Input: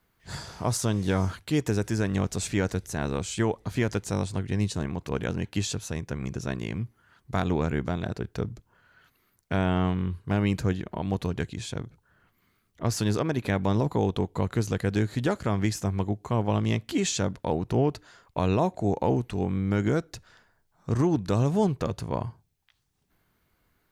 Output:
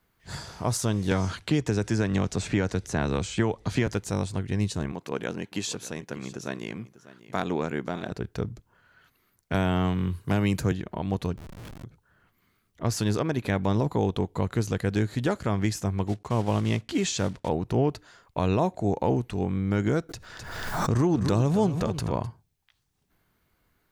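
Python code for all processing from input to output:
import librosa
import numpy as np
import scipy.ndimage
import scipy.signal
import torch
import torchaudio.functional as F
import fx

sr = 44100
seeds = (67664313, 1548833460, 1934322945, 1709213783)

y = fx.chain(x, sr, fx.lowpass(hz=7600.0, slope=12),
    fx.band_squash(depth_pct=100), at=(1.11, 3.87))
y = fx.chain(y, sr, fx.highpass(hz=210.0, slope=12),
    fx.echo_single(ms=595, db=-17.0), at=(4.92, 8.12))
y = fx.chain(y, sr, fx.high_shelf(hz=7000.0, db=11.5),
    fx.band_squash(depth_pct=40), at=(9.54, 10.72))
y = fx.chain(y, sr, fx.lowpass(hz=1400.0, slope=12),
    fx.over_compress(threshold_db=-41.0, ratio=-1.0),
    fx.schmitt(flips_db=-42.5), at=(11.37, 11.84))
y = fx.chain(y, sr, fx.block_float(bits=5),
    fx.lowpass(hz=8100.0, slope=12), at=(16.07, 17.49))
y = fx.chain(y, sr, fx.echo_single(ms=257, db=-13.0),
    fx.pre_swell(db_per_s=37.0), at=(20.09, 22.27))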